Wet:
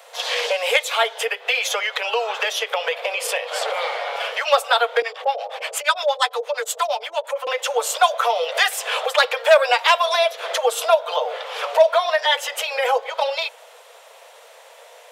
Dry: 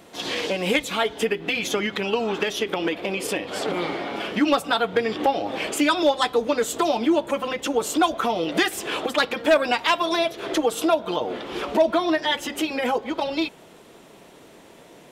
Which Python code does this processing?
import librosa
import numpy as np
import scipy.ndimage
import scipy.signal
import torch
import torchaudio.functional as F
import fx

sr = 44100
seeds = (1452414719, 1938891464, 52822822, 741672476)

y = scipy.signal.sosfilt(scipy.signal.butter(16, 470.0, 'highpass', fs=sr, output='sos'), x)
y = fx.harmonic_tremolo(y, sr, hz=8.6, depth_pct=100, crossover_hz=620.0, at=(5.02, 7.47))
y = y * 10.0 ** (5.0 / 20.0)